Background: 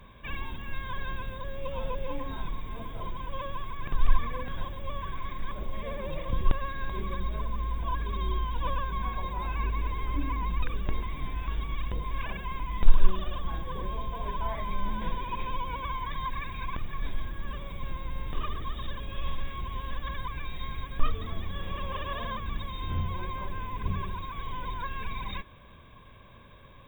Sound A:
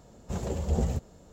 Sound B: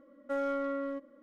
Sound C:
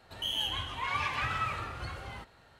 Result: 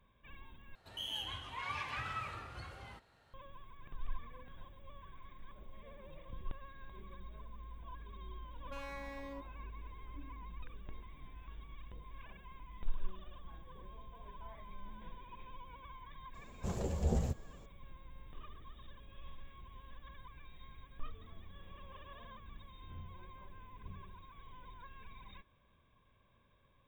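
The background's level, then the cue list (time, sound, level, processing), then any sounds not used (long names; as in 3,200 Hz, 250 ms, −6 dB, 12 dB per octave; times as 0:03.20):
background −18.5 dB
0:00.75: overwrite with C −8.5 dB
0:08.42: mix in B −9 dB + wave folding −32.5 dBFS
0:16.34: mix in A −5.5 dB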